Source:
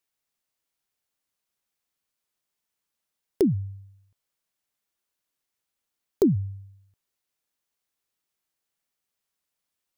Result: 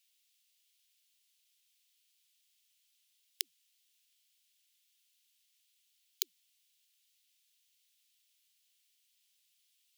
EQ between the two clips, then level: ladder high-pass 2.5 kHz, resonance 40%; +16.5 dB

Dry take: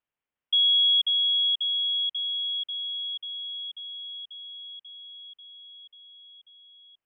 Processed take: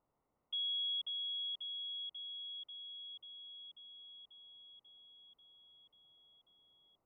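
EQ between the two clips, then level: Savitzky-Golay filter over 65 samples; distance through air 430 m; +15.0 dB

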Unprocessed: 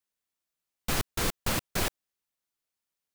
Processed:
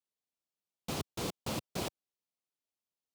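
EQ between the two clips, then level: high-pass 110 Hz 12 dB/octave; peaking EQ 1.7 kHz -11.5 dB 0.95 oct; treble shelf 7 kHz -11.5 dB; -3.5 dB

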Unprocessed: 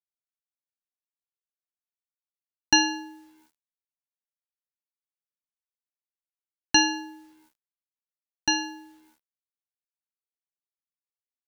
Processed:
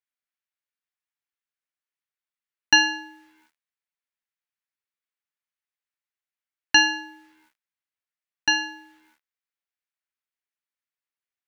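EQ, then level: peaking EQ 1.9 kHz +13.5 dB 2 oct; -5.5 dB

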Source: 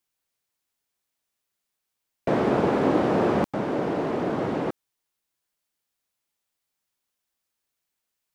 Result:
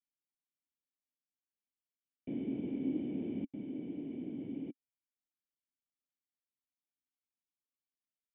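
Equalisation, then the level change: cascade formant filter i; peaking EQ 1.2 kHz -10 dB 0.38 oct; -7.5 dB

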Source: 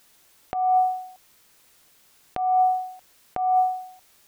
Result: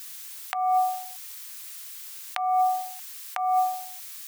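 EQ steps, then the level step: high-pass 1 kHz 24 dB/octave; tilt EQ +2.5 dB/octave; peaking EQ 1.4 kHz -2 dB 0.22 oct; +9.0 dB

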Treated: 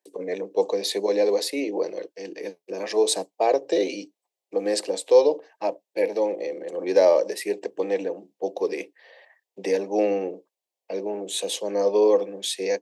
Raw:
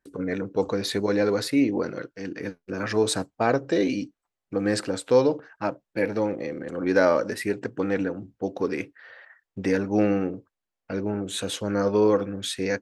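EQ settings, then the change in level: steep high-pass 200 Hz 48 dB/octave; static phaser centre 580 Hz, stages 4; +4.0 dB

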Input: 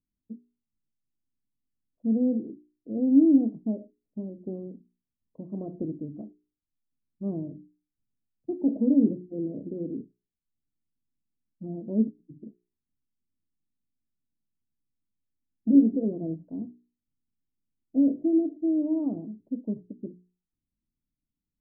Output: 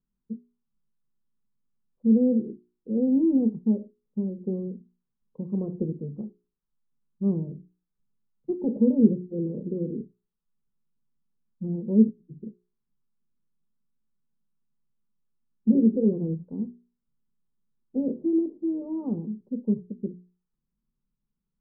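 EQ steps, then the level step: distance through air 440 m; static phaser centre 440 Hz, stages 8; +8.0 dB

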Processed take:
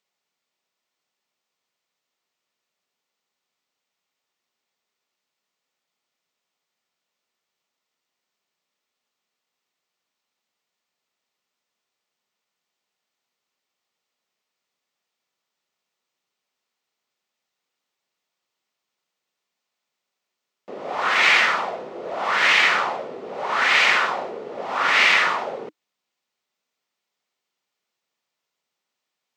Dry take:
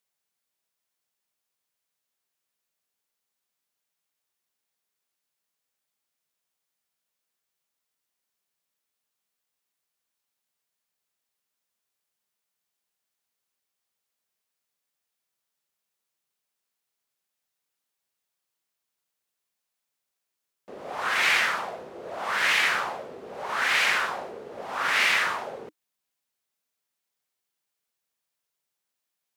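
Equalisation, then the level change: boxcar filter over 4 samples; high-pass 160 Hz 12 dB/octave; band-stop 1.6 kHz, Q 12; +7.0 dB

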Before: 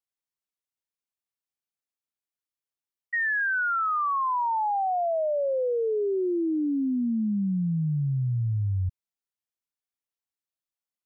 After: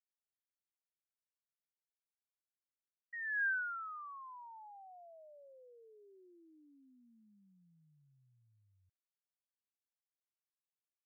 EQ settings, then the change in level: band-pass filter 1.6 kHz, Q 9.8; distance through air 470 m; -3.5 dB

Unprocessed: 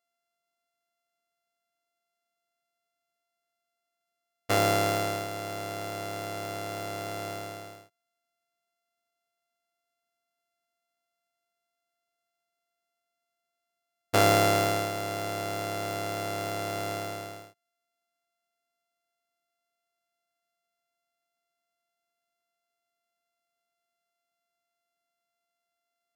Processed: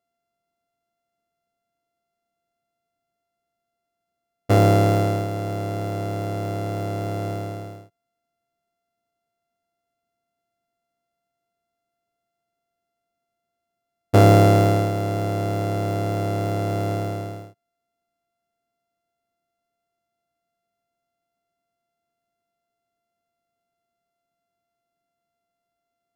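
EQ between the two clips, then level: tilt shelf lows +8.5 dB, about 700 Hz; peaking EQ 100 Hz +2.5 dB 1.2 oct; +5.5 dB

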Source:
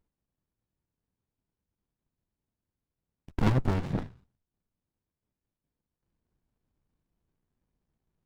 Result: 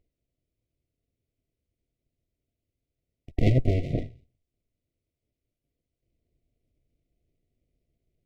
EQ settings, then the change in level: brick-wall FIR band-stop 730–1900 Hz; peaking EQ 190 Hz -10 dB 0.44 oct; treble shelf 4.2 kHz -11 dB; +5.5 dB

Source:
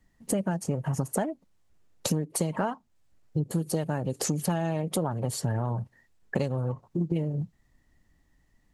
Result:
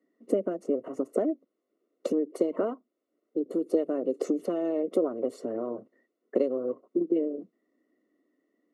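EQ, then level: Savitzky-Golay filter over 65 samples; high-pass 270 Hz 24 dB/octave; static phaser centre 360 Hz, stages 4; +8.0 dB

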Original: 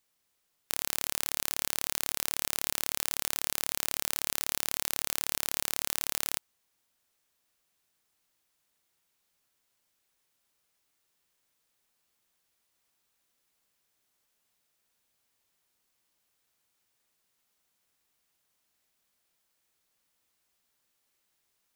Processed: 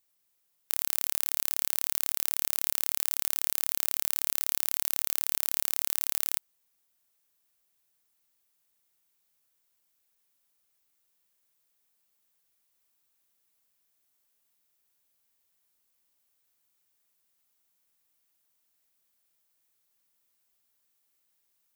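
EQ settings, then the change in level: treble shelf 10 kHz +11 dB; -4.5 dB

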